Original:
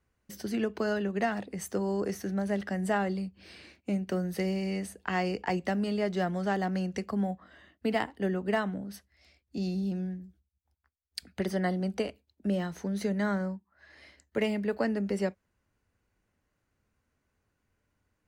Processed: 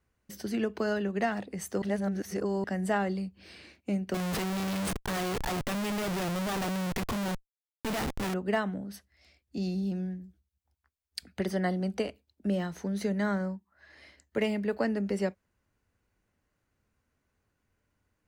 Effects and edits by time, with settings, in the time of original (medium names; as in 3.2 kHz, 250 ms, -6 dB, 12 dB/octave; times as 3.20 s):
1.82–2.64 s: reverse
4.14–8.34 s: Schmitt trigger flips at -43.5 dBFS